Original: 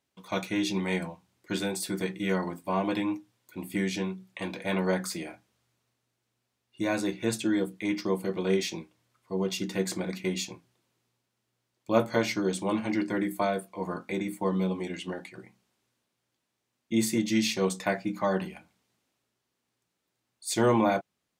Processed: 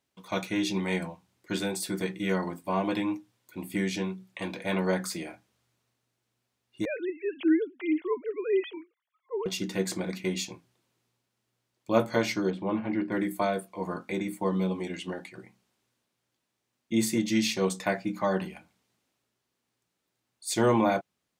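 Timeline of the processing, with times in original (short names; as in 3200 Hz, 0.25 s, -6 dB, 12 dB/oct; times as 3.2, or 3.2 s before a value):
6.85–9.46 sine-wave speech
12.5–13.12 air absorption 450 m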